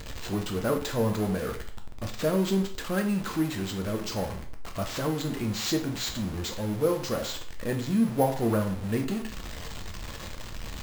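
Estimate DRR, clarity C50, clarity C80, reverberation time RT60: 4.0 dB, 9.5 dB, 14.5 dB, 0.45 s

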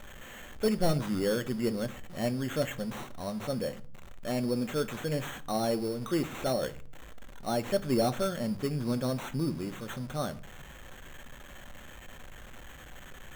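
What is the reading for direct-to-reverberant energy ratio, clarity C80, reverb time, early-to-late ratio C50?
10.5 dB, 24.0 dB, 0.45 s, 19.5 dB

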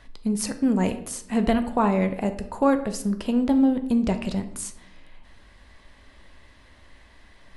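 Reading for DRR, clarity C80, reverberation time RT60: 7.5 dB, 15.0 dB, 0.75 s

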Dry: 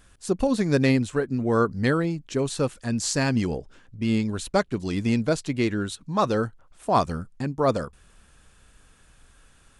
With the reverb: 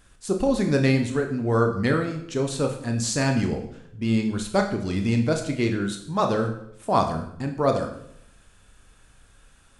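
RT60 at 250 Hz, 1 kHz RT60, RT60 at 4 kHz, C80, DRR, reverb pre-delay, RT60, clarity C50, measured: 0.85 s, 0.65 s, 0.60 s, 11.5 dB, 4.0 dB, 19 ms, 0.70 s, 8.5 dB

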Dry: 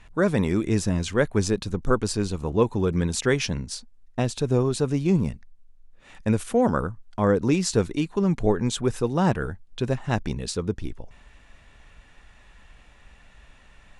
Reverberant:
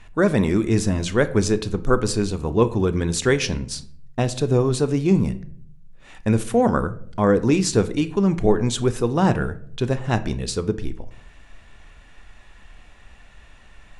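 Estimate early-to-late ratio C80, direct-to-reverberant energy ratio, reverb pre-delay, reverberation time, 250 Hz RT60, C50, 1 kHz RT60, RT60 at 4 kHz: 19.5 dB, 11.0 dB, 3 ms, 0.60 s, 0.80 s, 16.5 dB, 0.50 s, 0.35 s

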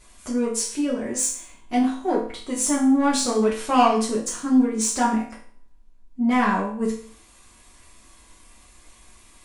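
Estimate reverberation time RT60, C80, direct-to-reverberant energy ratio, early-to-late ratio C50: 0.50 s, 11.0 dB, -5.5 dB, 6.0 dB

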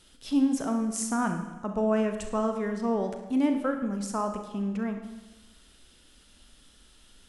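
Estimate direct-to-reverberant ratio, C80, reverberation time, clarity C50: 5.0 dB, 9.0 dB, 1.1 s, 7.0 dB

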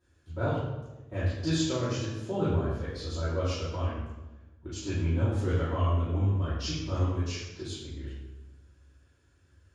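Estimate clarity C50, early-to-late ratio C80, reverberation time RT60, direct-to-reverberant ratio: -0.5 dB, 2.5 dB, 1.1 s, -13.0 dB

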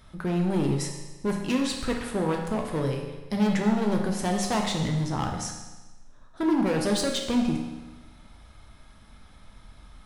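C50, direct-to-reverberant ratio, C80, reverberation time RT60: 4.5 dB, 1.0 dB, 6.5 dB, 1.2 s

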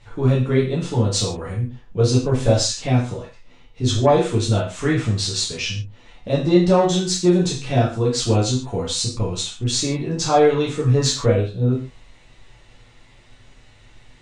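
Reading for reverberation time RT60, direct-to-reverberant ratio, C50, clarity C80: no single decay rate, -6.0 dB, 5.5 dB, 10.5 dB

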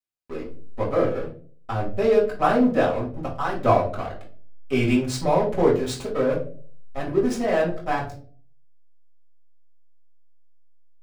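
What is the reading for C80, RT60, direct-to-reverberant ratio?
14.0 dB, 0.45 s, -5.0 dB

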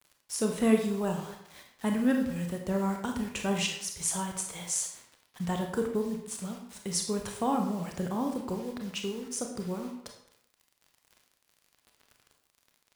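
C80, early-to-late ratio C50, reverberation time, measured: 8.5 dB, 5.5 dB, 0.70 s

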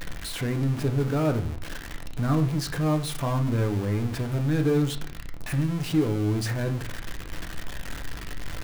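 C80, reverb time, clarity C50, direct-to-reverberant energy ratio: 18.0 dB, 0.40 s, 13.5 dB, 5.5 dB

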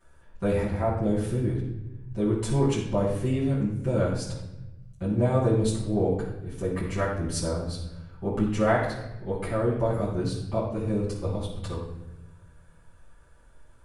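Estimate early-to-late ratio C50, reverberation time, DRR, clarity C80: 3.0 dB, 0.95 s, -11.0 dB, 6.0 dB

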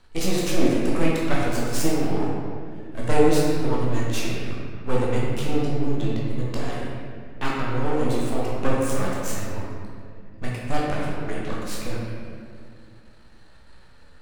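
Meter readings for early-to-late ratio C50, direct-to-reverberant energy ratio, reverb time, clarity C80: -2.0 dB, -6.0 dB, 2.1 s, 0.0 dB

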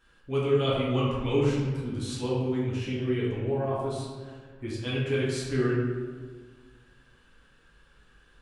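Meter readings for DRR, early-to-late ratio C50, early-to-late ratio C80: -7.0 dB, 0.0 dB, 2.5 dB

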